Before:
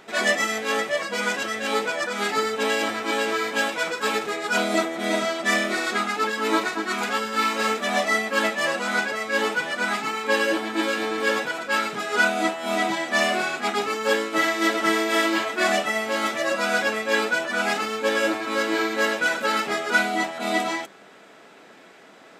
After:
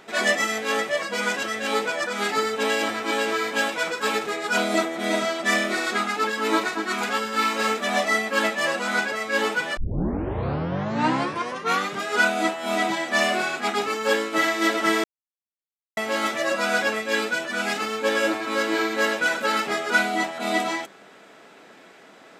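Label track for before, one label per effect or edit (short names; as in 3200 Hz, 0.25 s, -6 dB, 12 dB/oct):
9.770000	9.770000	tape start 2.30 s
15.040000	15.970000	mute
17.000000	17.810000	bell 860 Hz -4.5 dB 1.7 oct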